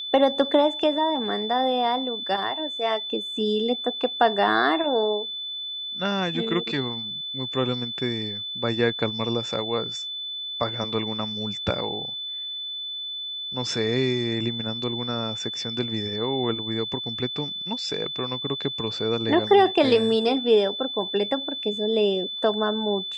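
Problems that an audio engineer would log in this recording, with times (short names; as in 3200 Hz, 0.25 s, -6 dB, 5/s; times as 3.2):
tone 3500 Hz -30 dBFS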